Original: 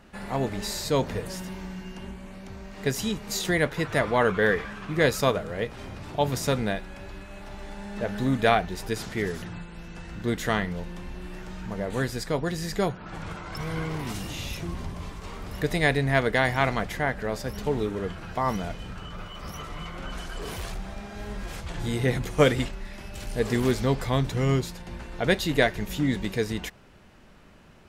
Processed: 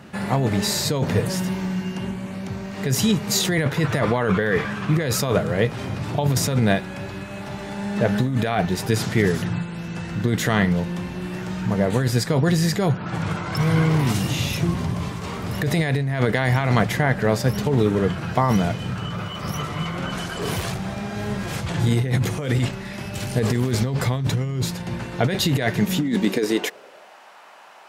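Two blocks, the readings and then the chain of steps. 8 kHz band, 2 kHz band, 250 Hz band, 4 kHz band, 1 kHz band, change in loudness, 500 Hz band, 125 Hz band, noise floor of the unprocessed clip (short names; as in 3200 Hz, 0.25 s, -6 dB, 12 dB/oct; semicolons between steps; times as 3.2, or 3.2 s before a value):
+8.5 dB, +2.0 dB, +7.5 dB, +6.0 dB, +3.0 dB, +5.0 dB, +2.5 dB, +9.5 dB, -44 dBFS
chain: high-pass sweep 120 Hz -> 810 Hz, 25.64–27.23; negative-ratio compressor -25 dBFS, ratio -1; gain +6 dB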